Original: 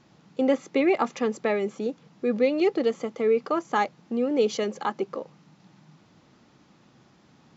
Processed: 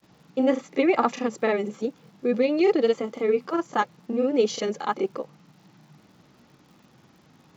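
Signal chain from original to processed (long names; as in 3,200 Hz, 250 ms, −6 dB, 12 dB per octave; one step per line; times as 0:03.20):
granular cloud 100 ms, spray 32 ms, pitch spread up and down by 0 semitones
surface crackle 120 per second −53 dBFS
level +2.5 dB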